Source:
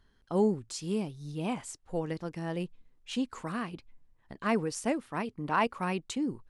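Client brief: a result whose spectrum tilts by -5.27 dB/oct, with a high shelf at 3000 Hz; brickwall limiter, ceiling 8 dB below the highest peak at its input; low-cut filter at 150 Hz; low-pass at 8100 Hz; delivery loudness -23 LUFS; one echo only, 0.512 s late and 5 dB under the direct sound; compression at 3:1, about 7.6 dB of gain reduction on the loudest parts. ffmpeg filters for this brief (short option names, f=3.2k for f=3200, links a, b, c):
-af "highpass=150,lowpass=8.1k,highshelf=f=3k:g=-3.5,acompressor=threshold=-32dB:ratio=3,alimiter=level_in=4.5dB:limit=-24dB:level=0:latency=1,volume=-4.5dB,aecho=1:1:512:0.562,volume=16.5dB"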